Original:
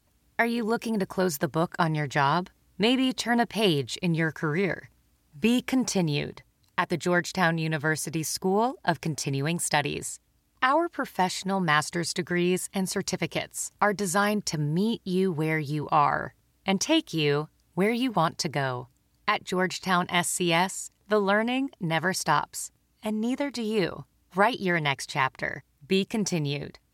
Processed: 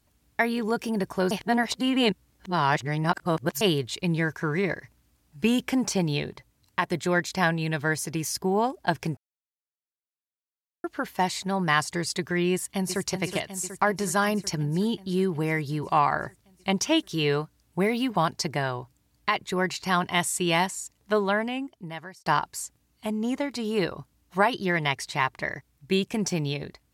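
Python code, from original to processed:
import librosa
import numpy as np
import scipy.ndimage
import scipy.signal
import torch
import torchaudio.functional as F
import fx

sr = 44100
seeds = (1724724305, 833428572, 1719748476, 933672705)

y = fx.echo_throw(x, sr, start_s=12.52, length_s=0.55, ms=370, feedback_pct=75, wet_db=-9.5)
y = fx.edit(y, sr, fx.reverse_span(start_s=1.31, length_s=2.3),
    fx.silence(start_s=9.17, length_s=1.67),
    fx.fade_out_span(start_s=21.15, length_s=1.11), tone=tone)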